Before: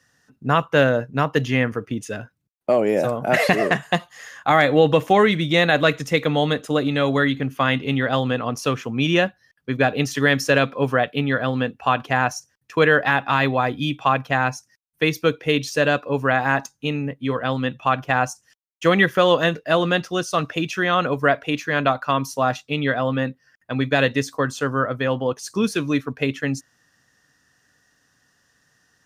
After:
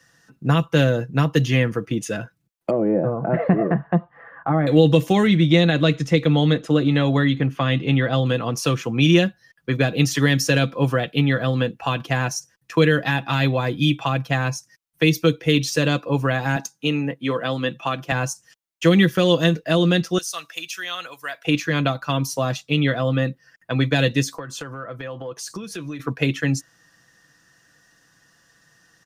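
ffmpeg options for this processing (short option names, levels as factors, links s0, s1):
-filter_complex "[0:a]asettb=1/sr,asplit=3[s0][s1][s2];[s0]atrim=end=2.704[s3];[s1]atrim=start=2.7:end=4.67,asetpts=PTS-STARTPTS,afade=t=in:d=0.004:c=qsin,afade=t=out:st=1.966:d=0.004:c=qsin,lowpass=f=1400:w=0.5412,lowpass=f=1400:w=1.3066[s4];[s2]atrim=start=4.666[s5];[s3][s4]acrossfade=d=0.004:c1=hsin:c2=qsin[s6];[s6][s5]acrossfade=d=0.004:c1=qsin:c2=hsin,asettb=1/sr,asplit=3[s7][s8][s9];[s7]atrim=end=5.274[s10];[s8]atrim=start=5.27:end=8.26,asetpts=PTS-STARTPTS,afade=t=in:d=0.004:c=qsin,afade=t=out:st=2.986:d=0.004:c=qsin,aemphasis=mode=reproduction:type=50fm[s11];[s9]atrim=start=8.256[s12];[s10][s11]acrossfade=d=0.004:c1=hsin:c2=qsin[s13];[s13][s12]acrossfade=d=0.004:c1=qsin:c2=hsin,asettb=1/sr,asplit=3[s14][s15][s16];[s14]atrim=end=16.564[s17];[s15]atrim=start=16.56:end=18.12,asetpts=PTS-STARTPTS,afade=t=in:d=0.004:c=qsin,afade=t=out:st=1.556:d=0.004:c=qsin,highpass=190[s18];[s16]atrim=start=18.116[s19];[s17][s18]acrossfade=d=0.004:c1=hsin:c2=qsin[s20];[s20][s19]acrossfade=d=0.004:c1=qsin:c2=hsin,asettb=1/sr,asplit=3[s21][s22][s23];[s21]atrim=end=20.184[s24];[s22]atrim=start=20.18:end=21.45,asetpts=PTS-STARTPTS,afade=t=in:d=0.004:c=qsin,afade=t=out:st=1.266:d=0.004:c=qsin,aderivative[s25];[s23]atrim=start=21.446[s26];[s24][s25]acrossfade=d=0.004:c1=hsin:c2=qsin[s27];[s27][s26]acrossfade=d=0.004:c1=qsin:c2=hsin,asplit=3[s28][s29][s30];[s28]afade=t=out:st=24.32:d=0.02[s31];[s29]acompressor=threshold=0.0224:ratio=10:attack=3.2:release=140:knee=1:detection=peak,afade=t=in:st=24.32:d=0.02,afade=t=out:st=25.99:d=0.02[s32];[s30]afade=t=in:st=25.99:d=0.02[s33];[s31][s32][s33]amix=inputs=3:normalize=0,aecho=1:1:6:0.46,acrossover=split=380|3000[s34][s35][s36];[s35]acompressor=threshold=0.0316:ratio=4[s37];[s34][s37][s36]amix=inputs=3:normalize=0,volume=1.58"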